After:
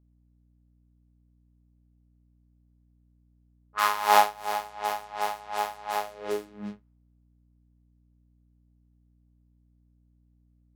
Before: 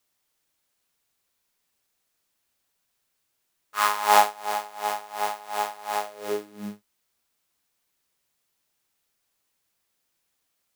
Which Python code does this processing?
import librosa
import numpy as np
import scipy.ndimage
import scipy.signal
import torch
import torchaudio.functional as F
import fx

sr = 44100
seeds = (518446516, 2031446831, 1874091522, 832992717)

y = fx.env_lowpass(x, sr, base_hz=480.0, full_db=-26.5)
y = fx.dynamic_eq(y, sr, hz=8200.0, q=1.6, threshold_db=-46.0, ratio=4.0, max_db=-5)
y = fx.add_hum(y, sr, base_hz=60, snr_db=30)
y = y * librosa.db_to_amplitude(-1.5)